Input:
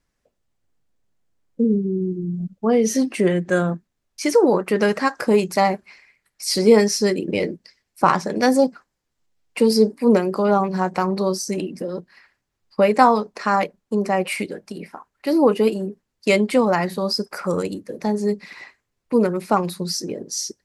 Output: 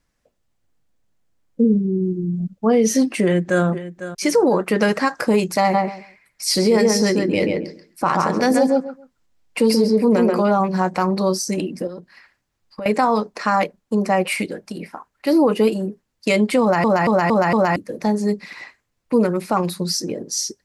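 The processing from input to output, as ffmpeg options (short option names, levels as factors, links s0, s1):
-filter_complex "[0:a]asettb=1/sr,asplit=3[s0][s1][s2];[s0]atrim=end=1.614[s3];[s1]atrim=start=1.61:end=2.02,asetpts=PTS-STARTPTS,afade=t=in:d=0.004:c=qsin,afade=t=out:st=0.406:d=0.004:c=qsin,lowpass=7100[s4];[s2]atrim=start=2.016[s5];[s3][s4]acrossfade=d=0.004:c1=hsin:c2=qsin[s6];[s6][s5]acrossfade=d=0.004:c1=qsin:c2=hsin,asplit=2[s7][s8];[s8]afade=t=in:st=3.22:d=0.01,afade=t=out:st=3.64:d=0.01,aecho=0:1:500|1000|1500:0.199526|0.0498816|0.0124704[s9];[s7][s9]amix=inputs=2:normalize=0,asplit=3[s10][s11][s12];[s10]afade=t=out:st=5.73:d=0.02[s13];[s11]asplit=2[s14][s15];[s15]adelay=134,lowpass=f=2000:p=1,volume=0.708,asplit=2[s16][s17];[s17]adelay=134,lowpass=f=2000:p=1,volume=0.18,asplit=2[s18][s19];[s19]adelay=134,lowpass=f=2000:p=1,volume=0.18[s20];[s14][s16][s18][s20]amix=inputs=4:normalize=0,afade=t=in:st=5.73:d=0.02,afade=t=out:st=10.41:d=0.02[s21];[s12]afade=t=in:st=10.41:d=0.02[s22];[s13][s21][s22]amix=inputs=3:normalize=0,asettb=1/sr,asplit=3[s23][s24][s25];[s23]atrim=end=11.874[s26];[s24]atrim=start=11.87:end=12.86,asetpts=PTS-STARTPTS,afade=t=in:d=0.004:c=qsin,afade=t=out:st=0.986:d=0.004:c=qsin,acompressor=threshold=0.0224:ratio=4:attack=3.2:release=140:knee=1:detection=peak[s27];[s25]atrim=start=12.856[s28];[s26][s27]acrossfade=d=0.004:c1=hsin:c2=qsin[s29];[s29][s28]acrossfade=d=0.004:c1=qsin:c2=hsin,asplit=6[s30][s31][s32][s33][s34][s35];[s30]atrim=end=16.842[s36];[s31]atrim=start=16.608:end=16.842[s37];[s32]atrim=start=16.608:end=16.842[s38];[s33]atrim=start=16.608:end=16.842[s39];[s34]atrim=start=16.608:end=16.842[s40];[s35]atrim=start=17.758[s41];[s36][s37]acrossfade=d=0.004:c1=hsin:c2=hsin[s42];[s42][s38]acrossfade=d=0.004:c1=hsin:c2=hsin[s43];[s43][s39]acrossfade=d=0.004:c1=hsin:c2=hsin[s44];[s44][s40]acrossfade=d=0.004:c1=hsin:c2=hsin[s45];[s45][s41]acrossfade=d=0.004:c1=hsin:c2=hsin,bandreject=f=400:w=12,alimiter=limit=0.282:level=0:latency=1:release=39,volume=1.41"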